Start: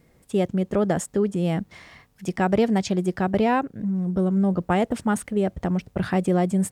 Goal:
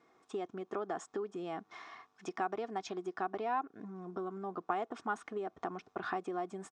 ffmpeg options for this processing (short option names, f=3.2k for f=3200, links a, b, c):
-af "aecho=1:1:2.8:0.39,acompressor=threshold=-28dB:ratio=6,highpass=400,equalizer=f=560:t=q:w=4:g=-8,equalizer=f=810:t=q:w=4:g=4,equalizer=f=1.2k:t=q:w=4:g=9,equalizer=f=2k:t=q:w=4:g=-6,equalizer=f=2.9k:t=q:w=4:g=-6,equalizer=f=4.5k:t=q:w=4:g=-8,lowpass=f=5.7k:w=0.5412,lowpass=f=5.7k:w=1.3066,volume=-3dB"